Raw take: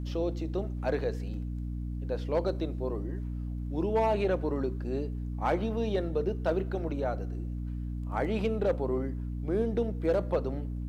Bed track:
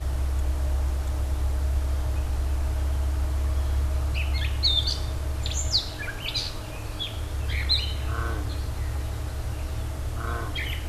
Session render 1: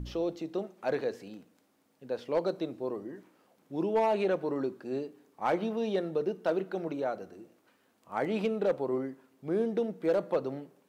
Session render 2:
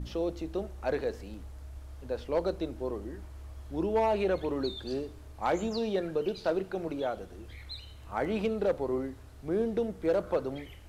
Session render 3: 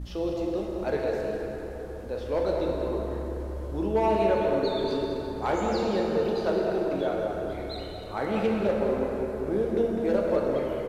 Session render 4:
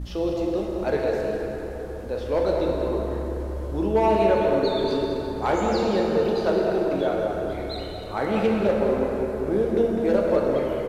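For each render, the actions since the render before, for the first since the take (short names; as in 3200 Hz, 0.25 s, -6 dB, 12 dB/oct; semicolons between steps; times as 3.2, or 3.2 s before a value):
de-hum 60 Hz, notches 5
add bed track -19.5 dB
outdoor echo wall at 35 m, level -7 dB; plate-style reverb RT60 4.4 s, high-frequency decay 0.5×, DRR -1.5 dB
gain +4 dB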